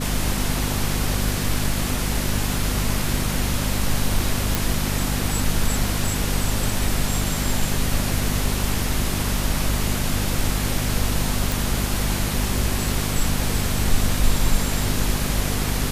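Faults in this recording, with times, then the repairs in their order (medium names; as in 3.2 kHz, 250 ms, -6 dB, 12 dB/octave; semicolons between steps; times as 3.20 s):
hum 50 Hz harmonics 5 -26 dBFS
4.55 s: pop
11.52 s: pop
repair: de-click; de-hum 50 Hz, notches 5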